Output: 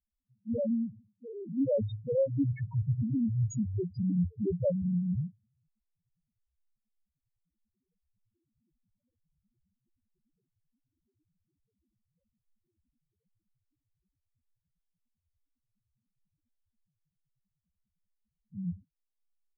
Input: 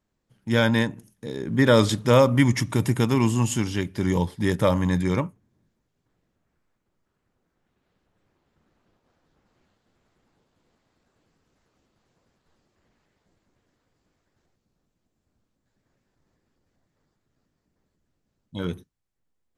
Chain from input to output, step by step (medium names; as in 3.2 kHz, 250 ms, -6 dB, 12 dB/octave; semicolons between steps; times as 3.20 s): loudest bins only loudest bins 1; gain riding within 5 dB 0.5 s